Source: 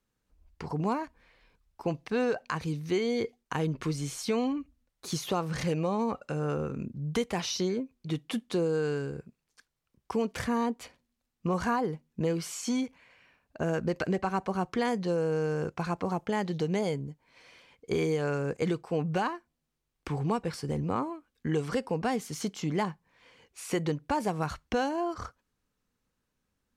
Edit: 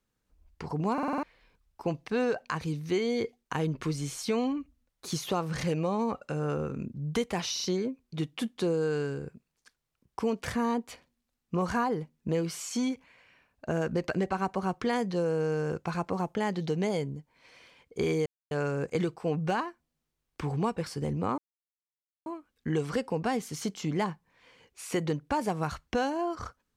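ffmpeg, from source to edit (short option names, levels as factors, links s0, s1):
-filter_complex "[0:a]asplit=11[s0][s1][s2][s3][s4][s5][s6][s7][s8][s9][s10];[s0]atrim=end=0.982[s11];[s1]atrim=start=0.928:end=0.982[s12];[s2]atrim=start=0.928:end=0.982[s13];[s3]atrim=start=0.928:end=0.982[s14];[s4]atrim=start=0.928:end=0.982[s15];[s5]atrim=start=0.928:end=0.982[s16];[s6]atrim=start=1.228:end=7.572[s17];[s7]atrim=start=7.528:end=7.572[s18];[s8]atrim=start=7.528:end=18.18,asetpts=PTS-STARTPTS,afade=t=out:st=10.648:d=0.004:c=hsin,apad=pad_dur=0.25[s19];[s9]atrim=start=18.18:end=21.05,asetpts=PTS-STARTPTS,afade=t=in:d=0.004:c=hsin,afade=t=out:st=2.866:d=0.004:c=hsin,apad=pad_dur=0.88[s20];[s10]atrim=start=21.05,asetpts=PTS-STARTPTS,afade=t=in:d=0.004:c=hsin[s21];[s11][s12]acrossfade=d=0.004:c1=hsin:c2=hsin[s22];[s22][s13]acrossfade=d=0.004:c1=hsin:c2=hsin[s23];[s23][s14]acrossfade=d=0.004:c1=hsin:c2=hsin[s24];[s24][s15]acrossfade=d=0.004:c1=hsin:c2=hsin[s25];[s25][s16]acrossfade=d=0.004:c1=hsin:c2=hsin[s26];[s26][s17]acrossfade=d=0.004:c1=hsin:c2=hsin[s27];[s27][s18]acrossfade=d=0.004:c1=hsin:c2=hsin[s28];[s19][s20][s21]concat=n=3:v=0:a=1[s29];[s28][s29]acrossfade=d=0.004:c1=hsin:c2=hsin"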